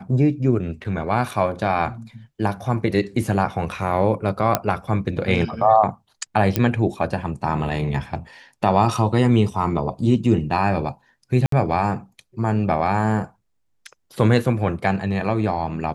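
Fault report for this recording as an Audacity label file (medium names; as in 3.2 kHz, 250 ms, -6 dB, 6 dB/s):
0.840000	0.850000	dropout 6.3 ms
4.550000	4.550000	pop -2 dBFS
6.560000	6.560000	pop -4 dBFS
11.460000	11.520000	dropout 63 ms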